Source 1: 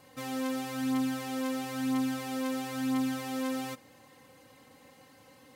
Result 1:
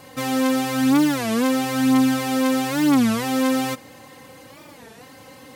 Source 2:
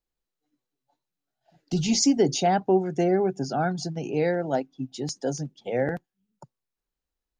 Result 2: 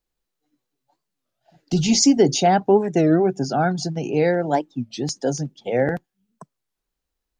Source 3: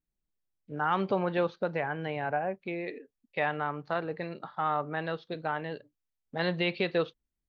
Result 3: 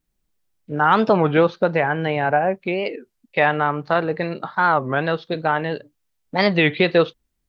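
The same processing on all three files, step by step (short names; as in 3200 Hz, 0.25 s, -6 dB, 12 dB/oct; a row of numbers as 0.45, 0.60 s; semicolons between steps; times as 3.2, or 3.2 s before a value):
record warp 33 1/3 rpm, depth 250 cents; match loudness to -20 LUFS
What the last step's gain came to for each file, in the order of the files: +13.0, +5.5, +12.0 dB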